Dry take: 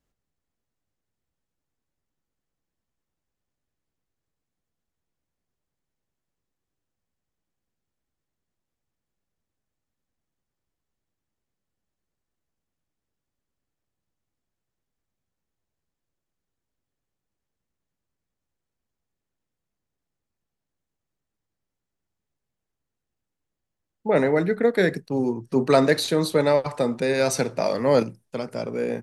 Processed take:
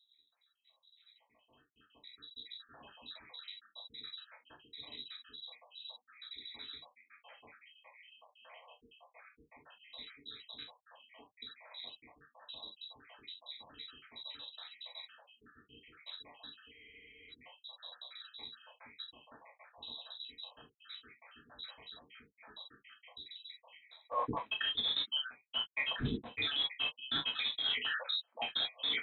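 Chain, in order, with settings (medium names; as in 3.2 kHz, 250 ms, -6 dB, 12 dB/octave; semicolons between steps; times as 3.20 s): random holes in the spectrogram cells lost 82%; recorder AGC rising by 12 dB/s; in parallel at -10.5 dB: integer overflow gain 26.5 dB; on the sum: treble shelf 2.5 kHz +10 dB; band-stop 1.1 kHz, Q 6; gated-style reverb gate 90 ms falling, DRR -1 dB; frequency inversion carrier 3.9 kHz; high-pass 110 Hz 6 dB/octave; reverse; compression 10:1, threshold -36 dBFS, peak gain reduction 21.5 dB; reverse; spectral freeze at 16.73 s, 0.57 s; trim +3.5 dB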